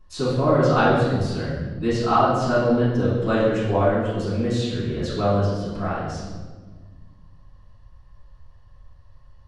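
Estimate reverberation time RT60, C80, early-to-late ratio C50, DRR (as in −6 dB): 1.5 s, 3.0 dB, 0.0 dB, −11.5 dB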